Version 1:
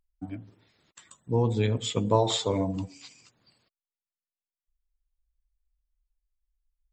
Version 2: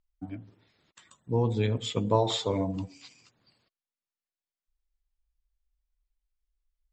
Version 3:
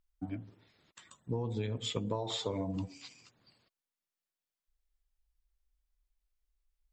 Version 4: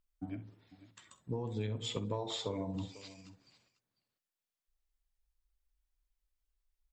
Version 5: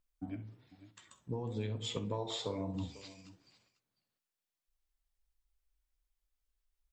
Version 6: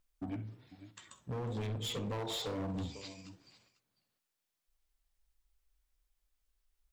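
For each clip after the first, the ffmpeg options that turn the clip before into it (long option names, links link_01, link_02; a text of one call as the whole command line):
ffmpeg -i in.wav -af "lowpass=6300,volume=-1.5dB" out.wav
ffmpeg -i in.wav -af "acompressor=threshold=-31dB:ratio=16" out.wav
ffmpeg -i in.wav -af "aecho=1:1:47|65|497:0.15|0.158|0.141,volume=-2.5dB" out.wav
ffmpeg -i in.wav -af "flanger=delay=9.6:depth=8.8:regen=78:speed=1.1:shape=sinusoidal,volume=4dB" out.wav
ffmpeg -i in.wav -af "asoftclip=type=hard:threshold=-39dB,volume=4dB" out.wav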